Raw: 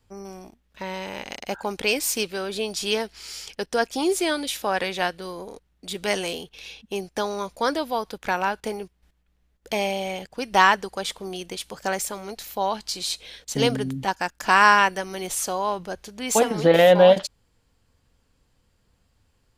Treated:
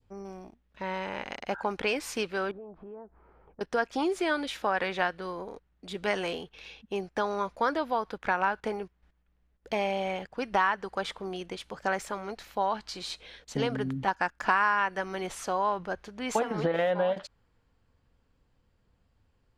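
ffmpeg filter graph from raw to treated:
-filter_complex "[0:a]asettb=1/sr,asplit=3[a][b][c];[a]atrim=end=2.514[d];[b]atrim=start=2.51:end=3.61,asetpts=PTS-STARTPTS,afade=t=in:d=0.004:c=qsin,afade=t=out:st=1.096:d=0.004:c=qsin,lowpass=f=1.1k:w=0.5412,lowpass=f=1.1k:w=1.3066,acompressor=threshold=-41dB:ratio=4:attack=3.2:release=140:knee=1:detection=peak[e];[c]atrim=start=3.606[f];[d][e]acrossfade=d=0.004:c1=hsin:c2=qsin[g];[g][f]acrossfade=d=0.004:c1=qsin:c2=hsin,aemphasis=mode=reproduction:type=75fm,acompressor=threshold=-21dB:ratio=16,adynamicequalizer=threshold=0.00794:dfrequency=1400:dqfactor=0.93:tfrequency=1400:tqfactor=0.93:attack=5:release=100:ratio=0.375:range=3.5:mode=boostabove:tftype=bell,volume=-4dB"

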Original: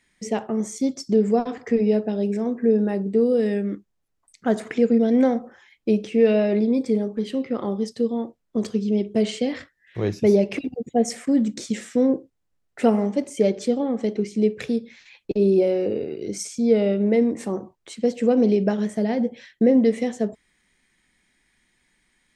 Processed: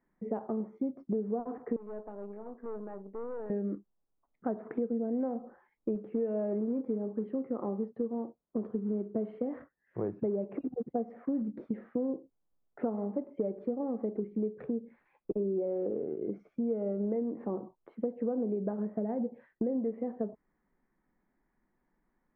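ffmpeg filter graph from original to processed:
-filter_complex "[0:a]asettb=1/sr,asplit=3[a][b][c];[a]atrim=end=1.764[d];[b]atrim=start=1.76:end=3.5,asetpts=PTS-STARTPTS,afade=t=in:d=0.004:c=qsin,afade=t=out:st=1.736:d=0.004:c=qsin,highpass=f=1.1k:p=1,aeval=exprs='(tanh(44.7*val(0)+0.65)-tanh(0.65))/44.7':c=same[e];[c]atrim=start=3.496[f];[d][e]acrossfade=d=0.004:c1=hsin:c2=qsin[g];[g][f]acrossfade=d=0.004:c1=qsin:c2=hsin,asettb=1/sr,asplit=3[h][i][j];[h]atrim=end=5.954[k];[i]atrim=start=5.95:end=11.42,asetpts=PTS-STARTPTS,afade=t=in:d=0.004:c=qsin,afade=t=out:st=5.466:d=0.004:c=qsin,acrusher=bits=6:mode=log:mix=0:aa=0.000001,highpass=43[l];[j]atrim=start=11.416[m];[k][l]acrossfade=d=0.004:c1=hsin:c2=qsin[n];[n][m]acrossfade=d=0.004:c1=qsin:c2=hsin,lowpass=f=1.2k:w=0.5412,lowpass=f=1.2k:w=1.3066,equalizer=f=84:t=o:w=0.81:g=-15,acompressor=threshold=-26dB:ratio=6,volume=-3.5dB"

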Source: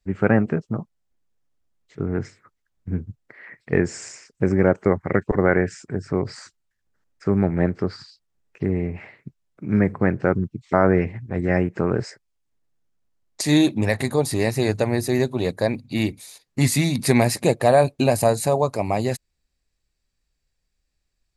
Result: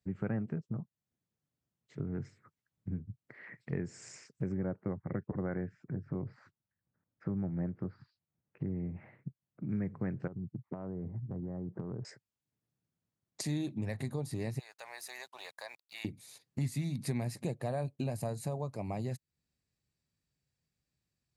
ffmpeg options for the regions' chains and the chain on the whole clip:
-filter_complex "[0:a]asettb=1/sr,asplit=3[a][b][c];[a]atrim=end=4.574[d];[b]atrim=start=4.57:end=9.69,asetpts=PTS-STARTPTS,afade=t=in:d=0.004:c=qsin,afade=t=out:st=5.116:d=0.004:c=qsin,lowpass=1.6k,bandreject=f=420:w=9.4[e];[c]atrim=start=9.686[f];[d][e]acrossfade=d=0.004:c1=hsin:c2=qsin[g];[g][f]acrossfade=d=0.004:c1=qsin:c2=hsin,asettb=1/sr,asplit=3[h][i][j];[h]atrim=end=10.274[k];[i]atrim=start=10.27:end=12.05,asetpts=PTS-STARTPTS,afade=t=in:d=0.004:c=qsin,afade=t=out:st=1.776:d=0.004:c=qsin,lowpass=f=1.1k:w=0.5412,lowpass=f=1.1k:w=1.3066,acompressor=threshold=-25dB:ratio=12:attack=3.2:release=140:knee=1:detection=peak[l];[j]atrim=start=12.046[m];[k][l]acrossfade=d=0.004:c1=hsin:c2=qsin[n];[n][m]acrossfade=d=0.004:c1=qsin:c2=hsin,asettb=1/sr,asplit=3[o][p][q];[o]atrim=end=14.594[r];[p]atrim=start=14.59:end=16.05,asetpts=PTS-STARTPTS,afade=t=in:d=0.004:c=qsin,afade=t=out:st=1.456:d=0.004:c=qsin,highpass=f=830:w=0.5412,highpass=f=830:w=1.3066,aeval=exprs='sgn(val(0))*max(abs(val(0))-0.00251,0)':c=same,acompressor=threshold=-35dB:ratio=2:attack=3.2:release=140:knee=1:detection=peak[s];[q]atrim=start=16.046[t];[r][s]acrossfade=d=0.004:c1=hsin:c2=qsin[u];[u][t]acrossfade=d=0.004:c1=qsin:c2=hsin,highpass=95,equalizer=f=130:t=o:w=1.8:g=12,acompressor=threshold=-31dB:ratio=2.5,volume=-8.5dB"

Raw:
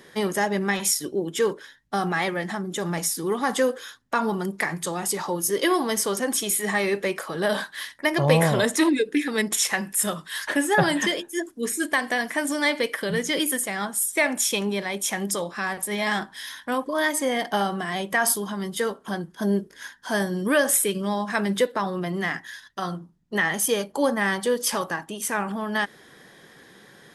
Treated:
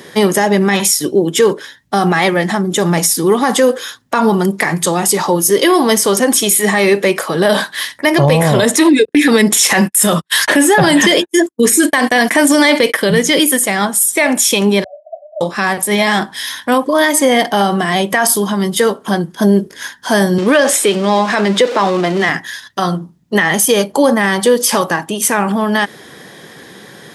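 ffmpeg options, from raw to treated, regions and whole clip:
-filter_complex "[0:a]asettb=1/sr,asplit=3[a][b][c];[a]atrim=end=9.054[d];[b]atrim=start=9.05:end=12.97,asetpts=PTS-STARTPTS,afade=t=in:d=0.004:c=qsin,afade=t=out:st=3.916:d=0.004:c=qsin,agate=range=-51dB:threshold=-36dB:ratio=16:release=100:detection=peak,acontrast=65[e];[c]atrim=start=12.966[f];[d][e]acrossfade=d=0.004:c1=hsin:c2=qsin[g];[g][f]acrossfade=d=0.004:c1=qsin:c2=hsin,asettb=1/sr,asplit=3[h][i][j];[h]atrim=end=14.844[k];[i]atrim=start=14.84:end=15.41,asetpts=PTS-STARTPTS,afade=t=in:d=0.004:c=qsin,afade=t=out:st=0.566:d=0.004:c=qsin,aeval=exprs='(mod(7.5*val(0)+1,2)-1)/7.5':c=same,asuperpass=centerf=640:order=8:qfactor=6.2[l];[j]atrim=start=15.406[m];[k][l]acrossfade=d=0.004:c1=hsin:c2=qsin[n];[n][m]acrossfade=d=0.004:c1=qsin:c2=hsin,asettb=1/sr,asplit=3[o][p][q];[o]atrim=end=20.384[r];[p]atrim=start=20.38:end=22.29,asetpts=PTS-STARTPTS,afade=t=in:d=0.004:c=qsin,afade=t=out:st=1.906:d=0.004:c=qsin,aeval=exprs='val(0)+0.5*0.0282*sgn(val(0))':c=same,highpass=260,lowpass=6.2k[s];[q]atrim=start=22.286[t];[r][s]acrossfade=d=0.004:c1=hsin:c2=qsin[u];[u][t]acrossfade=d=0.004:c1=qsin:c2=hsin,highpass=f=70:w=0.5412,highpass=f=70:w=1.3066,equalizer=f=1.5k:w=1.7:g=-3,alimiter=level_in=15.5dB:limit=-1dB:release=50:level=0:latency=1,volume=-1dB"

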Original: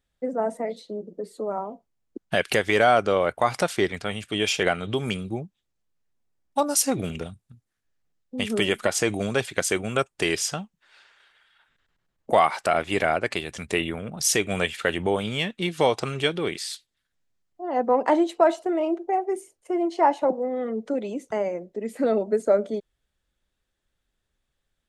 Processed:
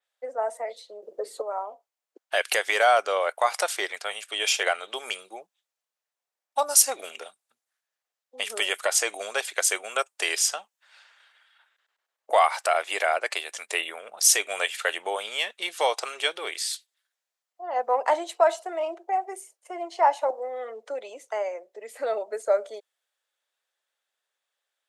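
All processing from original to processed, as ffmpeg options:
-filter_complex "[0:a]asettb=1/sr,asplit=3[a][b][c];[a]atrim=end=1.024[d];[b]atrim=start=1.02:end=1.42,asetpts=PTS-STARTPTS,afade=t=in:d=0.004:c=qsin,afade=t=out:st=0.396:d=0.004:c=qsin,equalizer=f=520:t=o:w=2.4:g=4.5,bandreject=f=50:t=h:w=6,bandreject=f=100:t=h:w=6,bandreject=f=150:t=h:w=6,bandreject=f=200:t=h:w=6,bandreject=f=250:t=h:w=6,bandreject=f=300:t=h:w=6,bandreject=f=350:t=h:w=6,bandreject=f=400:t=h:w=6,acontrast=56[e];[c]atrim=start=1.416[f];[d][e]acrossfade=d=0.004:c1=hsin:c2=qsin[g];[g][f]acrossfade=d=0.004:c1=qsin:c2=hsin,highpass=f=560:w=0.5412,highpass=f=560:w=1.3066,adynamicequalizer=threshold=0.00891:dfrequency=5200:dqfactor=0.7:tfrequency=5200:tqfactor=0.7:attack=5:release=100:ratio=0.375:range=3:mode=boostabove:tftype=highshelf"

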